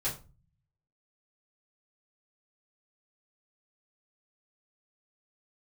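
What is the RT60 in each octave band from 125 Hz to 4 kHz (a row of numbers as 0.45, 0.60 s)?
1.0, 0.70, 0.35, 0.30, 0.25, 0.25 s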